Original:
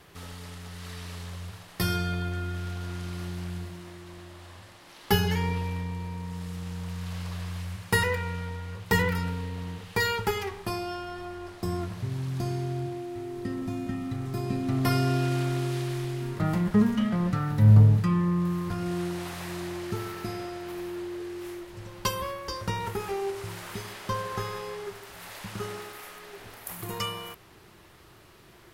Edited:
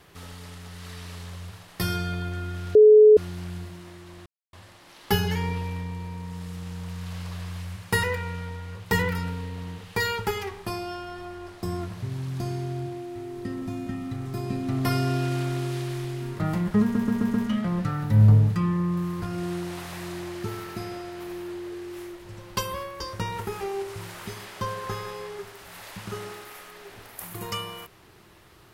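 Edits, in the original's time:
0:02.75–0:03.17: beep over 427 Hz −9 dBFS
0:04.26–0:04.53: silence
0:16.82: stutter 0.13 s, 5 plays

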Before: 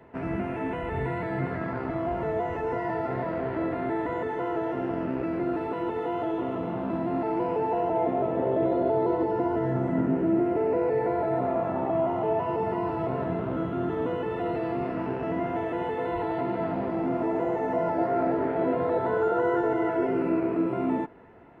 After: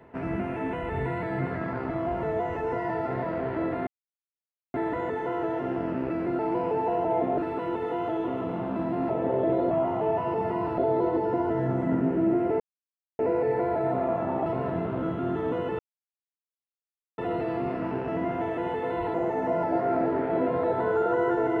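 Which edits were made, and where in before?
0:03.87: splice in silence 0.87 s
0:07.24–0:08.23: move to 0:05.52
0:10.66: splice in silence 0.59 s
0:11.93–0:13.00: move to 0:08.84
0:14.33: splice in silence 1.39 s
0:16.29–0:17.40: remove

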